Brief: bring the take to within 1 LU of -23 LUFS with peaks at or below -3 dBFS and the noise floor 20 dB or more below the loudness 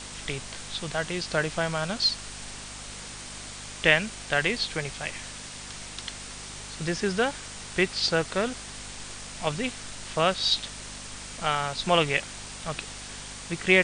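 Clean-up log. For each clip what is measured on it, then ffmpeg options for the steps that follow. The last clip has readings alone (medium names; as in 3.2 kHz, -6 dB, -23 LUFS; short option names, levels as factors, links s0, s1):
hum 50 Hz; highest harmonic 250 Hz; hum level -46 dBFS; noise floor -41 dBFS; noise floor target -49 dBFS; loudness -28.5 LUFS; peak level -4.5 dBFS; loudness target -23.0 LUFS
-> -af "bandreject=f=50:t=h:w=4,bandreject=f=100:t=h:w=4,bandreject=f=150:t=h:w=4,bandreject=f=200:t=h:w=4,bandreject=f=250:t=h:w=4"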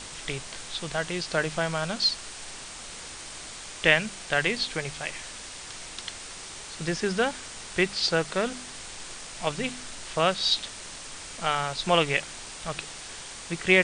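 hum not found; noise floor -41 dBFS; noise floor target -49 dBFS
-> -af "afftdn=nr=8:nf=-41"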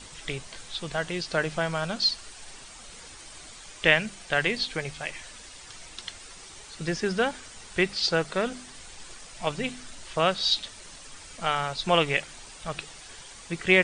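noise floor -46 dBFS; noise floor target -48 dBFS
-> -af "afftdn=nr=6:nf=-46"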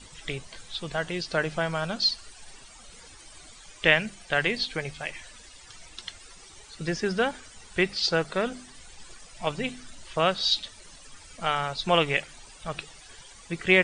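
noise floor -50 dBFS; loudness -27.5 LUFS; peak level -4.5 dBFS; loudness target -23.0 LUFS
-> -af "volume=1.68,alimiter=limit=0.708:level=0:latency=1"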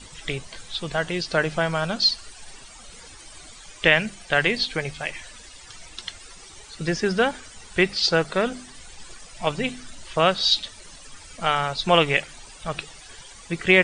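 loudness -23.0 LUFS; peak level -3.0 dBFS; noise floor -45 dBFS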